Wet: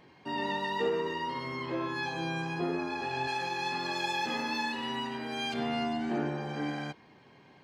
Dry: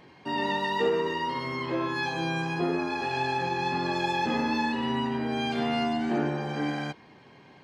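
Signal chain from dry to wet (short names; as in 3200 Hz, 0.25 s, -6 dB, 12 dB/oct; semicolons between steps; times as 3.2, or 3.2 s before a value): 3.27–5.54 tilt +2.5 dB/oct; gain -4.5 dB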